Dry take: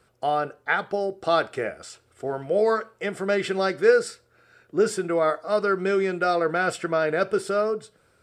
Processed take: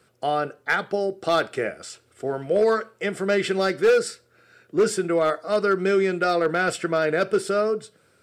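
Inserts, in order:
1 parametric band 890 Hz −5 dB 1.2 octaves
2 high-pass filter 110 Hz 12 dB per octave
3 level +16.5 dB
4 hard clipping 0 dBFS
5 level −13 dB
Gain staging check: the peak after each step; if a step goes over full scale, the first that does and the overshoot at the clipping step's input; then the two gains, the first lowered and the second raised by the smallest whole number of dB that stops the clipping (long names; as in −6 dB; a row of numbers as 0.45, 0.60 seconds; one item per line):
−8.5, −9.0, +7.5, 0.0, −13.0 dBFS
step 3, 7.5 dB
step 3 +8.5 dB, step 5 −5 dB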